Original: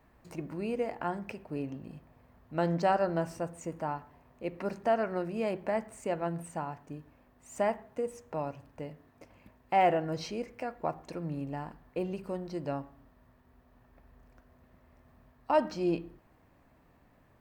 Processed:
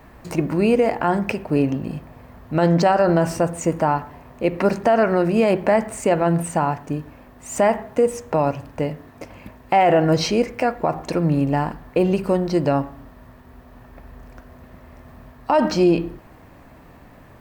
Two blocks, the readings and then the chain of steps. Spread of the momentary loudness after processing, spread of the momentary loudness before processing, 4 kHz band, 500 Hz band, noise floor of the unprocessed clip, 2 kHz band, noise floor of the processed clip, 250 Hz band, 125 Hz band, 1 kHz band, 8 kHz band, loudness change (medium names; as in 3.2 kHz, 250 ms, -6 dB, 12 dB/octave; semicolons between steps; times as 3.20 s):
11 LU, 17 LU, +15.5 dB, +13.5 dB, -64 dBFS, +13.0 dB, -47 dBFS, +15.5 dB, +16.0 dB, +11.5 dB, +17.5 dB, +13.5 dB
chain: loudness maximiser +24.5 dB; trim -7 dB